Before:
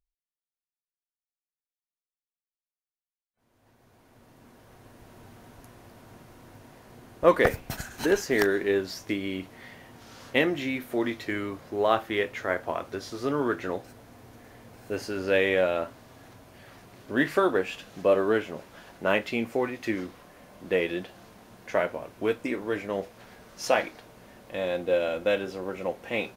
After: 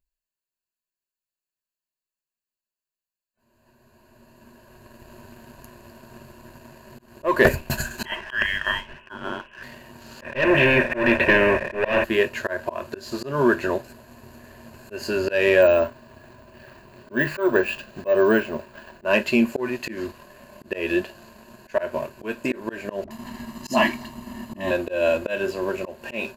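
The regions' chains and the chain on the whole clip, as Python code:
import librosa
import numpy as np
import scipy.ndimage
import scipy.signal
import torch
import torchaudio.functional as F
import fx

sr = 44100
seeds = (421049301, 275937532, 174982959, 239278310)

y = fx.chain(x, sr, fx.highpass(hz=830.0, slope=6),
    fx.tilt_eq(slope=4.0),
    fx.freq_invert(carrier_hz=3600), at=(8.05, 9.63))
y = fx.chain(y, sr, fx.leveller(passes=5),
    fx.formant_cascade(vowel='e'),
    fx.spectral_comp(ratio=2.0), at=(10.21, 12.04))
y = fx.chain(y, sr, fx.high_shelf(hz=5300.0, db=-11.5),
    fx.resample_bad(factor=2, down='none', up='hold'), at=(15.62, 19.05))
y = fx.chain(y, sr, fx.peak_eq(hz=250.0, db=11.5, octaves=0.67),
    fx.comb(ms=1.0, depth=0.9),
    fx.dispersion(late='highs', ms=66.0, hz=610.0), at=(23.04, 24.71))
y = fx.ripple_eq(y, sr, per_octave=1.4, db=13)
y = fx.leveller(y, sr, passes=1)
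y = fx.auto_swell(y, sr, attack_ms=187.0)
y = F.gain(torch.from_numpy(y), 2.5).numpy()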